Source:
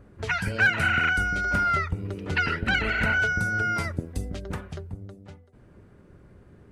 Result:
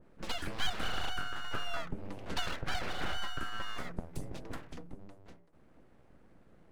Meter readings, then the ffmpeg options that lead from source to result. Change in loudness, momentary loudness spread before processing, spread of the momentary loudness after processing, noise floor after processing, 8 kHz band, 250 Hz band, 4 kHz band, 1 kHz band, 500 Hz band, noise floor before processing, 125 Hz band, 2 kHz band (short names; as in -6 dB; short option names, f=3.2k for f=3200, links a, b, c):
-14.5 dB, 15 LU, 14 LU, -61 dBFS, -6.0 dB, -12.0 dB, -3.5 dB, -13.0 dB, -10.0 dB, -54 dBFS, -15.5 dB, -19.0 dB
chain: -af "aeval=exprs='abs(val(0))':c=same,adynamicequalizer=threshold=0.00708:dfrequency=1800:dqfactor=0.7:tfrequency=1800:tqfactor=0.7:attack=5:release=100:ratio=0.375:range=4:mode=cutabove:tftype=highshelf,volume=-7dB"